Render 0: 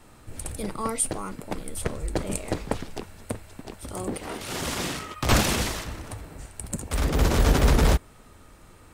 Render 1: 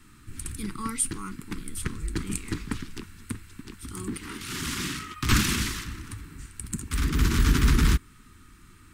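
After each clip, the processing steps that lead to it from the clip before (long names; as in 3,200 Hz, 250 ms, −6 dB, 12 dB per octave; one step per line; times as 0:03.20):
Chebyshev band-stop filter 300–1,300 Hz, order 2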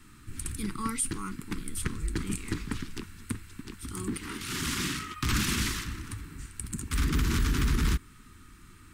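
brickwall limiter −18 dBFS, peak gain reduction 9.5 dB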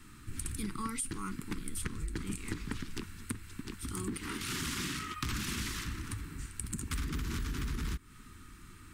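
downward compressor 6 to 1, threshold −33 dBFS, peak gain reduction 10.5 dB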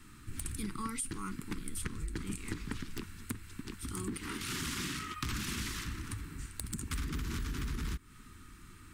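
wrap-around overflow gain 21 dB
level −1 dB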